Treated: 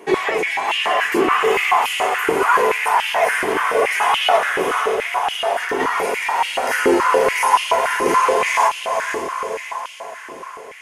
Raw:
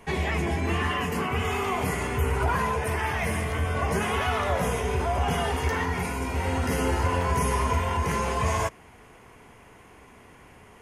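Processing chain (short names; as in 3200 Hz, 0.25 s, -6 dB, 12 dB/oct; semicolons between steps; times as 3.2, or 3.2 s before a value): 4.36–5.8 compressor, threshold -28 dBFS, peak gain reduction 8 dB; diffused feedback echo 0.507 s, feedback 56%, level -5 dB; stepped high-pass 7 Hz 350–2900 Hz; gain +6 dB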